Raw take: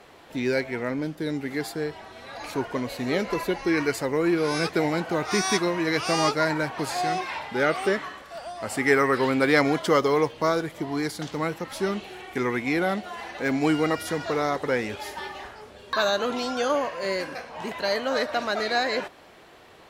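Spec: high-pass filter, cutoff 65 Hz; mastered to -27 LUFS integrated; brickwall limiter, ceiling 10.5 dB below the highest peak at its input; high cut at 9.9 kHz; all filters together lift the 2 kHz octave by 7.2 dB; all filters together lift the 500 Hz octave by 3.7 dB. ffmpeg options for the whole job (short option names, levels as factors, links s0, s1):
-af "highpass=65,lowpass=9900,equalizer=f=500:t=o:g=4,equalizer=f=2000:t=o:g=8.5,volume=0.668,alimiter=limit=0.188:level=0:latency=1"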